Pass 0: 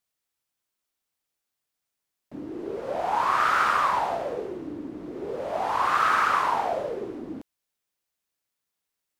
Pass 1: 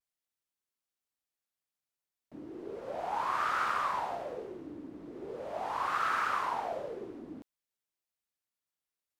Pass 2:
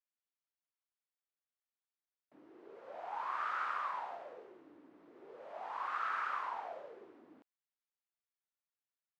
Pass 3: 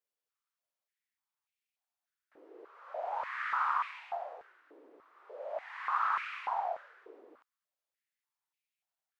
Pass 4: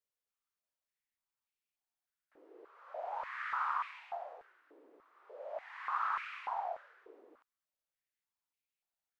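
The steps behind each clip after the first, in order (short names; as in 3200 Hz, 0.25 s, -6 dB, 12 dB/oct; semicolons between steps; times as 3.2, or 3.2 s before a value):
vibrato 0.53 Hz 38 cents; gain -9 dB
band-pass 1400 Hz, Q 0.65; gain -6 dB
stepped high-pass 3.4 Hz 460–2400 Hz
low shelf 61 Hz +9 dB; gain -4 dB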